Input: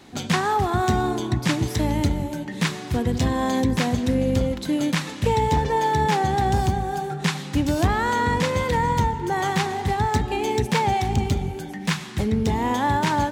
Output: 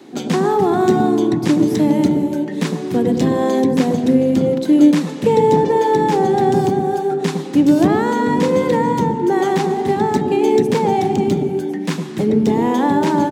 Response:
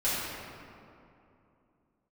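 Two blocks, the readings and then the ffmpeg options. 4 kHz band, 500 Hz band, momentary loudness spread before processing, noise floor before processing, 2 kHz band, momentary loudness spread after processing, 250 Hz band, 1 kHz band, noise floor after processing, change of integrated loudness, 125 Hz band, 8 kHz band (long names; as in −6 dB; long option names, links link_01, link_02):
−1.0 dB, +10.5 dB, 5 LU, −34 dBFS, −1.0 dB, 6 LU, +10.0 dB, +3.0 dB, −26 dBFS, +7.0 dB, 0.0 dB, 0.0 dB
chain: -filter_complex "[0:a]equalizer=frequency=340:width=0.94:gain=12,acrossover=split=130|960|4500[link_01][link_02][link_03][link_04];[link_01]afreqshift=98[link_05];[link_02]aecho=1:1:105:0.668[link_06];[link_03]alimiter=limit=-19.5dB:level=0:latency=1:release=316[link_07];[link_05][link_06][link_07][link_04]amix=inputs=4:normalize=0"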